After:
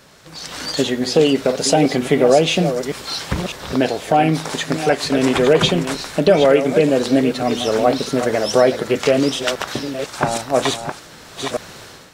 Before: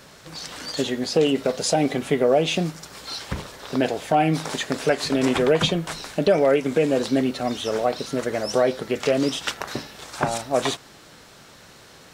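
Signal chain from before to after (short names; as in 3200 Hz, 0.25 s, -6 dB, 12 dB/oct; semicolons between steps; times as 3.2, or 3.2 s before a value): reverse delay 0.503 s, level -9.5 dB; AGC gain up to 11.5 dB; gain -1 dB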